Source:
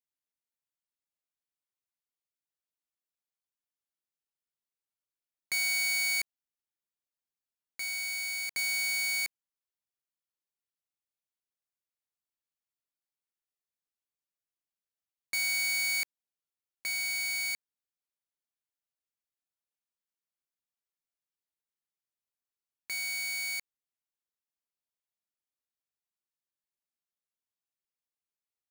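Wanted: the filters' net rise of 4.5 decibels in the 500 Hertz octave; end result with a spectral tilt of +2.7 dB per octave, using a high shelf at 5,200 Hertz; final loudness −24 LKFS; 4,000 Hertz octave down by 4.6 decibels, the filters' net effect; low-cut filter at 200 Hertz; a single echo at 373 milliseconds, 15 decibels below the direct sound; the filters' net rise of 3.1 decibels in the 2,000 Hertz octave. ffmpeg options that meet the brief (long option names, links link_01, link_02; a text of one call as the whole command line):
ffmpeg -i in.wav -af "highpass=200,equalizer=frequency=500:width_type=o:gain=7,equalizer=frequency=2000:width_type=o:gain=5,equalizer=frequency=4000:width_type=o:gain=-7.5,highshelf=frequency=5200:gain=3,aecho=1:1:373:0.178,volume=4.5dB" out.wav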